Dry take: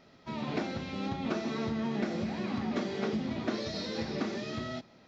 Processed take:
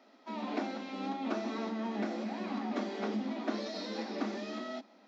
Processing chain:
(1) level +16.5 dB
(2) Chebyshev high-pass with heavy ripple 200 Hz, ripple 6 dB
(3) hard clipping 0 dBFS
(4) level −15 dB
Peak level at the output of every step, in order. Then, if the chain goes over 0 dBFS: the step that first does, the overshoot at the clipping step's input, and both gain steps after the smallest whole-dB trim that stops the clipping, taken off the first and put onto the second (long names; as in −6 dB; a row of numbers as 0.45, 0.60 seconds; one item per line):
−2.0, −5.0, −5.0, −20.0 dBFS
no step passes full scale